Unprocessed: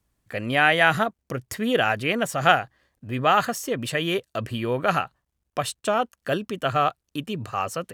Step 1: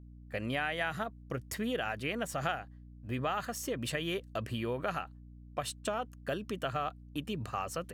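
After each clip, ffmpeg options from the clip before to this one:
ffmpeg -i in.wav -af "agate=range=-33dB:threshold=-36dB:ratio=3:detection=peak,acompressor=threshold=-27dB:ratio=4,aeval=exprs='val(0)+0.00562*(sin(2*PI*60*n/s)+sin(2*PI*2*60*n/s)/2+sin(2*PI*3*60*n/s)/3+sin(2*PI*4*60*n/s)/4+sin(2*PI*5*60*n/s)/5)':channel_layout=same,volume=-5dB" out.wav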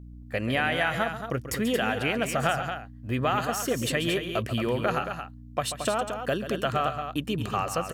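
ffmpeg -i in.wav -af "aecho=1:1:137|224.5:0.282|0.398,volume=7.5dB" out.wav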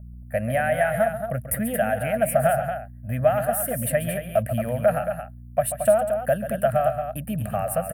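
ffmpeg -i in.wav -af "firequalizer=gain_entry='entry(210,0);entry(360,-26);entry(620,10);entry(990,-17);entry(1600,-2);entry(3500,-21);entry(6500,-23);entry(9500,8)':delay=0.05:min_phase=1,volume=4dB" out.wav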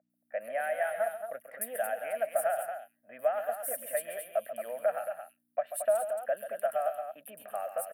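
ffmpeg -i in.wav -filter_complex "[0:a]highpass=frequency=390:width=0.5412,highpass=frequency=390:width=1.3066,acrossover=split=3100[link_01][link_02];[link_02]adelay=100[link_03];[link_01][link_03]amix=inputs=2:normalize=0,volume=-9dB" out.wav

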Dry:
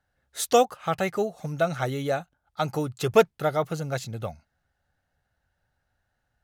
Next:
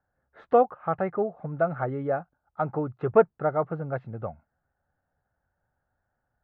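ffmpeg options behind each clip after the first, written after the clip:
ffmpeg -i in.wav -af "lowpass=frequency=1500:width=0.5412,lowpass=frequency=1500:width=1.3066,lowshelf=frequency=110:gain=-6" out.wav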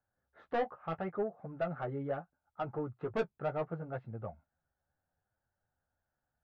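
ffmpeg -i in.wav -af "asoftclip=type=tanh:threshold=-19dB,flanger=delay=8.2:depth=6.8:regen=-22:speed=0.73:shape=triangular,volume=-4.5dB" out.wav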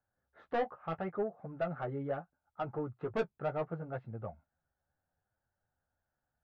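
ffmpeg -i in.wav -af anull out.wav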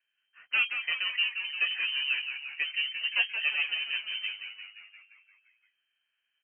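ffmpeg -i in.wav -filter_complex "[0:a]asplit=2[link_01][link_02];[link_02]asplit=8[link_03][link_04][link_05][link_06][link_07][link_08][link_09][link_10];[link_03]adelay=174,afreqshift=68,volume=-8dB[link_11];[link_04]adelay=348,afreqshift=136,volume=-12dB[link_12];[link_05]adelay=522,afreqshift=204,volume=-16dB[link_13];[link_06]adelay=696,afreqshift=272,volume=-20dB[link_14];[link_07]adelay=870,afreqshift=340,volume=-24.1dB[link_15];[link_08]adelay=1044,afreqshift=408,volume=-28.1dB[link_16];[link_09]adelay=1218,afreqshift=476,volume=-32.1dB[link_17];[link_10]adelay=1392,afreqshift=544,volume=-36.1dB[link_18];[link_11][link_12][link_13][link_14][link_15][link_16][link_17][link_18]amix=inputs=8:normalize=0[link_19];[link_01][link_19]amix=inputs=2:normalize=0,lowpass=frequency=2700:width_type=q:width=0.5098,lowpass=frequency=2700:width_type=q:width=0.6013,lowpass=frequency=2700:width_type=q:width=0.9,lowpass=frequency=2700:width_type=q:width=2.563,afreqshift=-3200,volume=5.5dB" out.wav

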